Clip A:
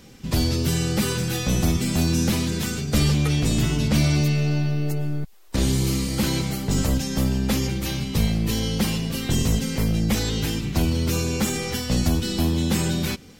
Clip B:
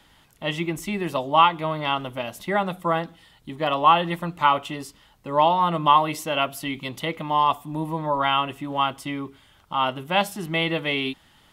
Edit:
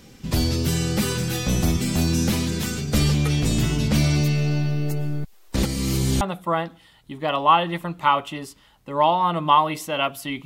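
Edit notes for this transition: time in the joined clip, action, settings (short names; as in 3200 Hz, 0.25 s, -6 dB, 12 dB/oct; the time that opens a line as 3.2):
clip A
5.63–6.21 reverse
6.21 switch to clip B from 2.59 s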